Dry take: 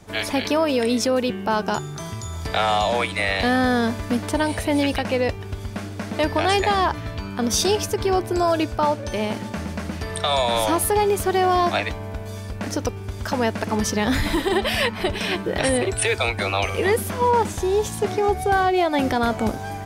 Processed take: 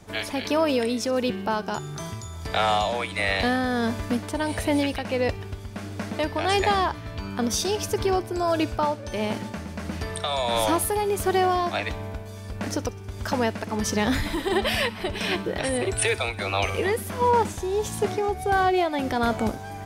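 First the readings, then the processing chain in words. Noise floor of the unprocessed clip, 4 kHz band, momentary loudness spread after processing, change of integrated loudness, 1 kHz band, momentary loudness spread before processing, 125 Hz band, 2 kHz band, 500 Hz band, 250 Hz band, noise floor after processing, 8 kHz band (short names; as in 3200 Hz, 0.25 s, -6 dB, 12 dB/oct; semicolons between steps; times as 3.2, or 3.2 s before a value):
-33 dBFS, -3.5 dB, 11 LU, -3.5 dB, -3.0 dB, 10 LU, -3.5 dB, -3.5 dB, -3.5 dB, -3.5 dB, -37 dBFS, -3.5 dB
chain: tremolo 1.5 Hz, depth 42%; thin delay 63 ms, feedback 62%, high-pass 2100 Hz, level -19 dB; gain -1.5 dB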